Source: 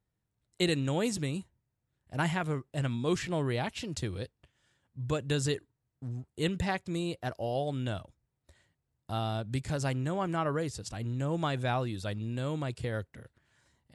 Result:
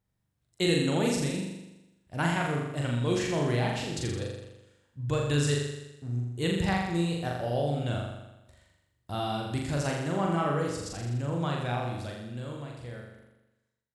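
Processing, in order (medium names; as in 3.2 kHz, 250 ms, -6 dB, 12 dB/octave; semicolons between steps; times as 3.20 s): fade out at the end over 3.69 s; flutter echo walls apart 7.1 m, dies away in 0.98 s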